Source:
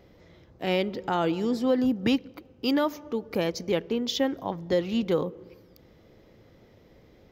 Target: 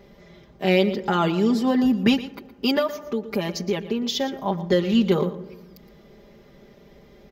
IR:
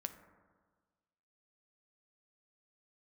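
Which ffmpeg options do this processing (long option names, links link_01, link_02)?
-filter_complex "[0:a]aecho=1:1:5:0.89,asettb=1/sr,asplit=3[link_01][link_02][link_03];[link_01]atrim=end=2.794[link_04];[link_02]atrim=start=2.79:end=4.41,asetpts=PTS-STARTPTS,afade=type=in:duration=0.004:curve=qsin,afade=type=out:start_time=1.616:duration=0.004:curve=qsin,acompressor=threshold=-28dB:ratio=2[link_05];[link_03]atrim=start=4.406[link_06];[link_04][link_05]acrossfade=duration=0.004:curve1=hsin:curve2=qsin[link_07];[link_07][link_06]acrossfade=duration=0.004:curve1=qsin:curve2=hsin,asplit=2[link_08][link_09];[1:a]atrim=start_sample=2205,adelay=117[link_10];[link_09][link_10]afir=irnorm=-1:irlink=0,volume=-12dB[link_11];[link_08][link_11]amix=inputs=2:normalize=0,volume=3.5dB"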